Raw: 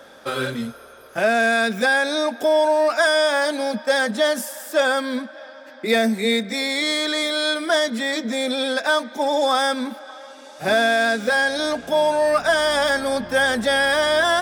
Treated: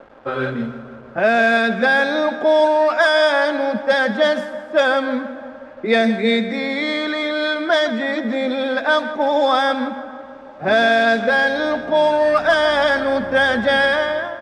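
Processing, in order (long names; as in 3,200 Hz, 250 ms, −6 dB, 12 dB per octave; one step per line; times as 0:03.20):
fade-out on the ending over 0.59 s
repeating echo 162 ms, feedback 57%, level −12 dB
bit reduction 7 bits
low-pass that shuts in the quiet parts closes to 1,100 Hz, open at −7.5 dBFS
level +3 dB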